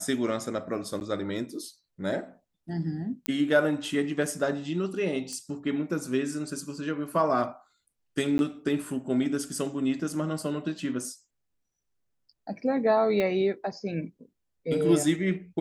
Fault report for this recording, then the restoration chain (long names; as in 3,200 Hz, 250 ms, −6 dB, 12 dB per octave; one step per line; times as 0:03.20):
0:01.00–0:01.01: drop-out 9.8 ms
0:03.26: click −12 dBFS
0:05.33: click −24 dBFS
0:08.38–0:08.39: drop-out 11 ms
0:13.20: click −16 dBFS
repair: click removal
repair the gap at 0:01.00, 9.8 ms
repair the gap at 0:08.38, 11 ms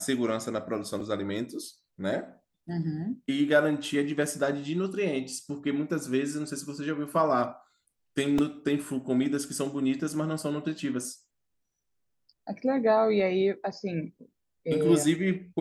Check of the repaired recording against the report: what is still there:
0:13.20: click